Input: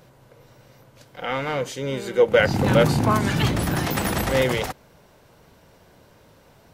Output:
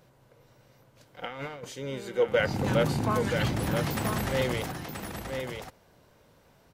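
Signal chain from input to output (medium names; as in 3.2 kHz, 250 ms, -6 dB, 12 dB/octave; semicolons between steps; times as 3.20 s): 1.23–1.65 s: compressor with a negative ratio -29 dBFS, ratio -0.5; delay 980 ms -6 dB; trim -8 dB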